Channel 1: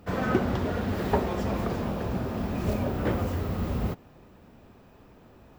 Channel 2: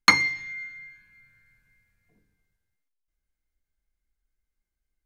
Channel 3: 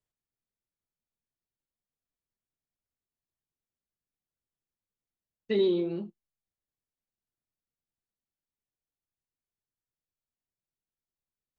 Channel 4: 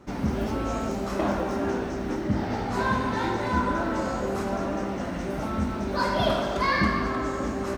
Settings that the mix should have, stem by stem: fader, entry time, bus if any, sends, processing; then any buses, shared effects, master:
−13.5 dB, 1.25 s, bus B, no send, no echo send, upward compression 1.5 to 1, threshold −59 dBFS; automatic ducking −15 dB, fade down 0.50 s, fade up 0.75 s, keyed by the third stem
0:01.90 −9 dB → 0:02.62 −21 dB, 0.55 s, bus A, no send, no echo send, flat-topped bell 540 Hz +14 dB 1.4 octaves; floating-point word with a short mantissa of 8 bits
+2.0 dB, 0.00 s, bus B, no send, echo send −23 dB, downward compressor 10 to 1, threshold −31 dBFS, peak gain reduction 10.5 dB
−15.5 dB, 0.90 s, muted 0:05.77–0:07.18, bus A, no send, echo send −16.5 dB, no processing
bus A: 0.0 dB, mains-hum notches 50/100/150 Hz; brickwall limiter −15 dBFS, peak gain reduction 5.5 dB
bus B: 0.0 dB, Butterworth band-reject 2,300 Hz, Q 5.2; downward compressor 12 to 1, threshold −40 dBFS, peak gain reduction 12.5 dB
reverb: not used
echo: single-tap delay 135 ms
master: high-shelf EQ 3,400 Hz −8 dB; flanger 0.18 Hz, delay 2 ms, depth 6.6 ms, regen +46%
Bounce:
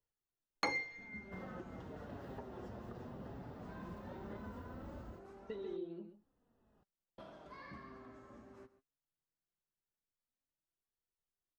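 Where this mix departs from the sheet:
stem 3: missing downward compressor 10 to 1, threshold −31 dBFS, peak gain reduction 10.5 dB
stem 4 −15.5 dB → −23.5 dB

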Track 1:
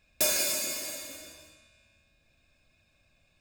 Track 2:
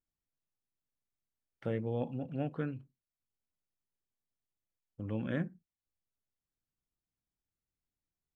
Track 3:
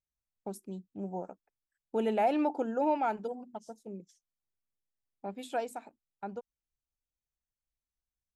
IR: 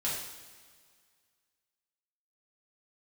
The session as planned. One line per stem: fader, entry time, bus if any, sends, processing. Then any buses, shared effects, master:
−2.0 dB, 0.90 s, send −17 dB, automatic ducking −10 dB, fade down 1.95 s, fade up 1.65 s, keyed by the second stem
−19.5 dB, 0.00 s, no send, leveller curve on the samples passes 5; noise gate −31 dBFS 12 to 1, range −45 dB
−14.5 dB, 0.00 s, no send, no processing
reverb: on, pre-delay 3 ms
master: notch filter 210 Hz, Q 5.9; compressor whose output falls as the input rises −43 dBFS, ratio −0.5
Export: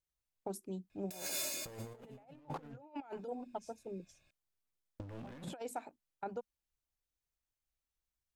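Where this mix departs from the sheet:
stem 1 −2.0 dB → −10.0 dB
stem 2 −19.5 dB → −12.0 dB
stem 3 −14.5 dB → −5.5 dB

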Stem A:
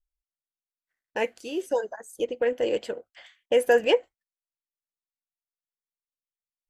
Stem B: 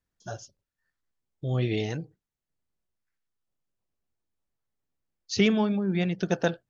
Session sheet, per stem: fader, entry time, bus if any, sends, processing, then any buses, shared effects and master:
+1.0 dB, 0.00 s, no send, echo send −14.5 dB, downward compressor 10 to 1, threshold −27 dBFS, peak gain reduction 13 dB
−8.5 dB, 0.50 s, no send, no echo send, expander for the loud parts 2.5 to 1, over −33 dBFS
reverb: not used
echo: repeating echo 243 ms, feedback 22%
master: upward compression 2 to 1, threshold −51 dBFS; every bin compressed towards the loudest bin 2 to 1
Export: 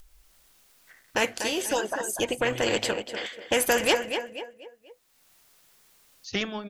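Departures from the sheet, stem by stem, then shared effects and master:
stem A: missing downward compressor 10 to 1, threshold −27 dBFS, peak gain reduction 13 dB
stem B: entry 0.50 s → 0.95 s

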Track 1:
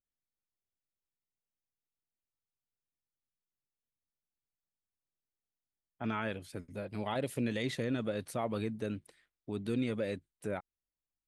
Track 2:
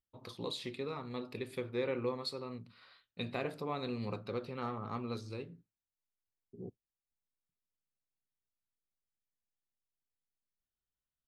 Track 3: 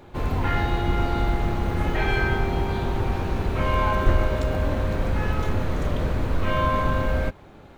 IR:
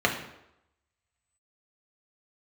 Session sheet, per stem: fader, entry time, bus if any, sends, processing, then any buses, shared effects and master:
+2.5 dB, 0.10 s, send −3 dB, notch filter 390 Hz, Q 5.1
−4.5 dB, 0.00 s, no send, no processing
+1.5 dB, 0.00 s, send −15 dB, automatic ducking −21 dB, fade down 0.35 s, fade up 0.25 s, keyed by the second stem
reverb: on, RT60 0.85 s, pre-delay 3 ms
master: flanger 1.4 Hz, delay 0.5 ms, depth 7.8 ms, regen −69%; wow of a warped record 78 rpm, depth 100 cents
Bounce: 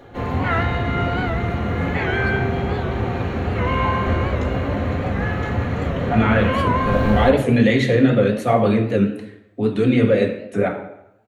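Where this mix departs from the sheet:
stem 1: missing notch filter 390 Hz, Q 5.1
reverb return +7.5 dB

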